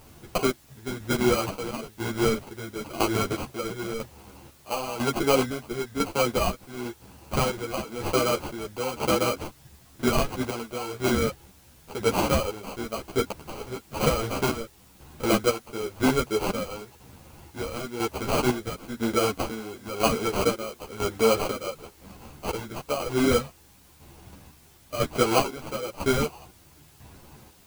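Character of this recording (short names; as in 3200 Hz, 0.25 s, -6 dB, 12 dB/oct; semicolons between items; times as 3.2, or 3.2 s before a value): aliases and images of a low sample rate 1800 Hz, jitter 0%; chopped level 1 Hz, depth 65%, duty 50%; a quantiser's noise floor 10-bit, dither triangular; a shimmering, thickened sound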